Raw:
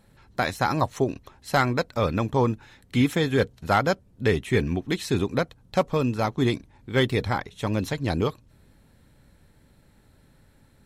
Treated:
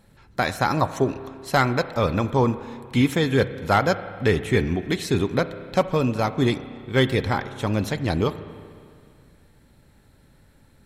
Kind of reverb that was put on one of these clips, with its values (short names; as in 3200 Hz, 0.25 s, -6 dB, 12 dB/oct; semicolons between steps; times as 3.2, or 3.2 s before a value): spring tank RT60 2.2 s, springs 30/38 ms, chirp 65 ms, DRR 12 dB; gain +2 dB